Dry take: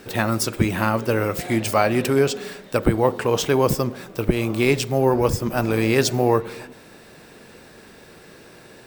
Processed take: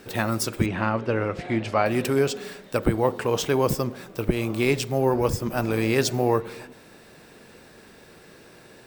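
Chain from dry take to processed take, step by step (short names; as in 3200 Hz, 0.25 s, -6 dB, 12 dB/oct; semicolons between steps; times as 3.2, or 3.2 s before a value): 0.66–1.86 LPF 3400 Hz 12 dB/oct; gain -3.5 dB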